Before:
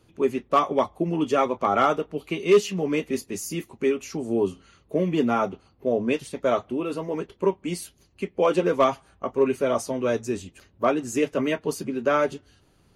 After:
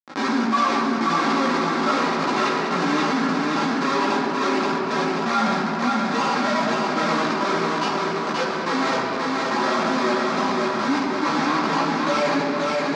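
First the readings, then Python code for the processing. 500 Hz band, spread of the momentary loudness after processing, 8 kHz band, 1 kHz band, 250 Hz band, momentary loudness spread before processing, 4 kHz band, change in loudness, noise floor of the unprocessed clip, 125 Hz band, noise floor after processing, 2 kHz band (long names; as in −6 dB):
−2.0 dB, 2 LU, +2.0 dB, +7.0 dB, +4.5 dB, 10 LU, +10.5 dB, +3.5 dB, −61 dBFS, +1.5 dB, −25 dBFS, +10.5 dB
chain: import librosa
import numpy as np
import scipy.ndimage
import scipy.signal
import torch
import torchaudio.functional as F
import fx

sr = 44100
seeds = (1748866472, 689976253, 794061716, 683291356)

p1 = fx.hpss_only(x, sr, part='harmonic')
p2 = fx.peak_eq(p1, sr, hz=2800.0, db=14.0, octaves=0.26)
p3 = fx.rider(p2, sr, range_db=4, speed_s=0.5)
p4 = p2 + (p3 * 10.0 ** (1.0 / 20.0))
p5 = p4 + 10.0 ** (-29.0 / 20.0) * np.sin(2.0 * np.pi * 980.0 * np.arange(len(p4)) / sr)
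p6 = fx.schmitt(p5, sr, flips_db=-28.0)
p7 = fx.step_gate(p6, sr, bpm=194, pattern='..xxxxxxxx.', floor_db=-24.0, edge_ms=4.5)
p8 = fx.chorus_voices(p7, sr, voices=4, hz=0.32, base_ms=16, depth_ms=3.0, mix_pct=50)
p9 = fx.cabinet(p8, sr, low_hz=240.0, low_slope=24, high_hz=5500.0, hz=(310.0, 510.0, 1200.0, 2900.0), db=(-7, -9, 6, -8))
p10 = fx.echo_feedback(p9, sr, ms=529, feedback_pct=42, wet_db=-4.0)
p11 = fx.room_shoebox(p10, sr, seeds[0], volume_m3=3800.0, walls='mixed', distance_m=2.2)
y = fx.env_flatten(p11, sr, amount_pct=50)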